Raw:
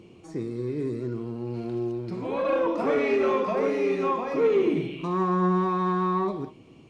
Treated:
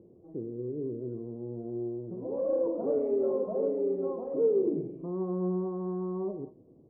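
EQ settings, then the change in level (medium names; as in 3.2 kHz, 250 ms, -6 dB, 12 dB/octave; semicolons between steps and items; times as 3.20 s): four-pole ladder low-pass 660 Hz, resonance 40%; 0.0 dB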